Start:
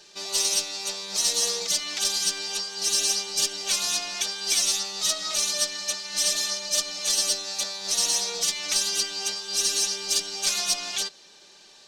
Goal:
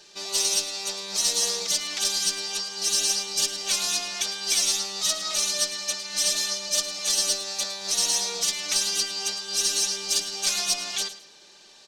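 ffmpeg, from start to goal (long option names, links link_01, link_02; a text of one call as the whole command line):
ffmpeg -i in.wav -af "aecho=1:1:107|214|321:0.2|0.0479|0.0115" out.wav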